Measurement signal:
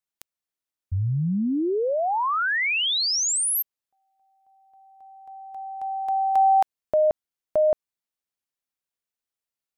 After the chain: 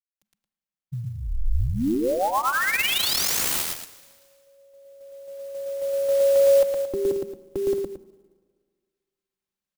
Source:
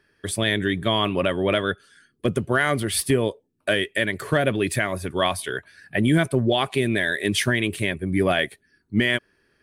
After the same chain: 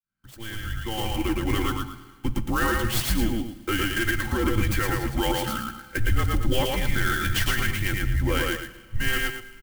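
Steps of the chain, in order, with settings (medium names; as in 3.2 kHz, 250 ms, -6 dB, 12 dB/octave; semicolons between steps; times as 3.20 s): fade-in on the opening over 2.02 s; bass shelf 180 Hz +10 dB; comb 3.9 ms, depth 87%; peak limiter -11 dBFS; on a send: loudspeakers at several distances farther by 39 m -2 dB, 77 m -11 dB; on the sum: frequency shift -220 Hz; Schroeder reverb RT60 1.7 s, combs from 32 ms, DRR 15.5 dB; sampling jitter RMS 0.03 ms; trim -4.5 dB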